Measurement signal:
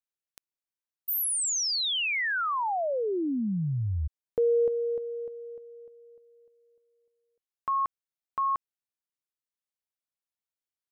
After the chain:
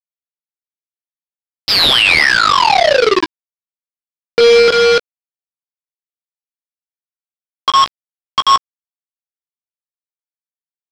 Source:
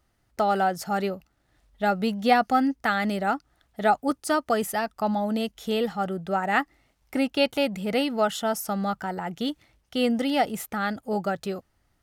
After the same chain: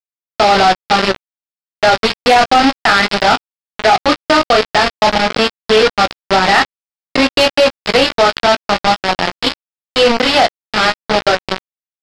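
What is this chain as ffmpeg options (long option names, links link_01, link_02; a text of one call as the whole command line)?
ffmpeg -i in.wav -filter_complex "[0:a]highpass=frequency=90:width=0.5412,highpass=frequency=90:width=1.3066,acrossover=split=320|1000[link_01][link_02][link_03];[link_01]acompressor=threshold=-42dB:ratio=12:attack=0.21:release=29:knee=6[link_04];[link_04][link_02][link_03]amix=inputs=3:normalize=0,flanger=delay=22.5:depth=3.7:speed=0.54,aresample=11025,acrusher=bits=4:mix=0:aa=0.000001,aresample=44100,asoftclip=type=tanh:threshold=-23dB,asplit=2[link_05][link_06];[link_06]adelay=16,volume=-14dB[link_07];[link_05][link_07]amix=inputs=2:normalize=0,alimiter=level_in=29.5dB:limit=-1dB:release=50:level=0:latency=1,volume=-3dB" -ar 48000 -c:a sbc -b:a 192k out.sbc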